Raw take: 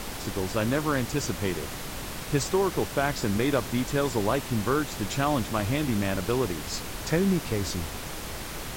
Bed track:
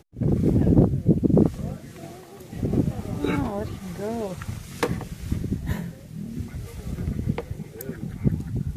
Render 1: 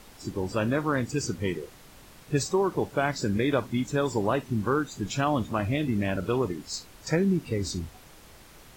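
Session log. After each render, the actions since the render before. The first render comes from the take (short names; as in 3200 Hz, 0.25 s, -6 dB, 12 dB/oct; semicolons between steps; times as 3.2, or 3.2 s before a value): noise print and reduce 15 dB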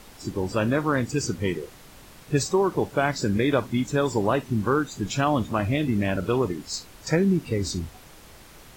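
gain +3 dB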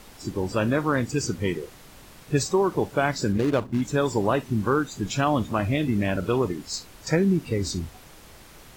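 3.32–3.82 median filter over 25 samples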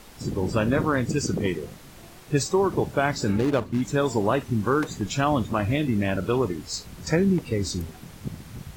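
add bed track -11.5 dB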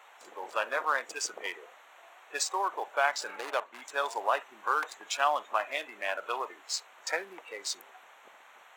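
Wiener smoothing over 9 samples; HPF 690 Hz 24 dB/oct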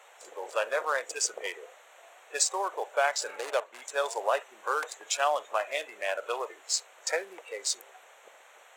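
graphic EQ 125/250/500/1000/8000 Hz -6/-9/+9/-4/+8 dB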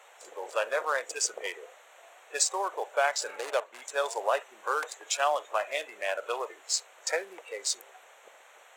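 4.9–5.63 steep high-pass 250 Hz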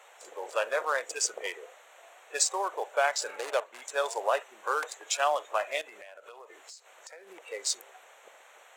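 5.81–7.46 compressor 16:1, threshold -44 dBFS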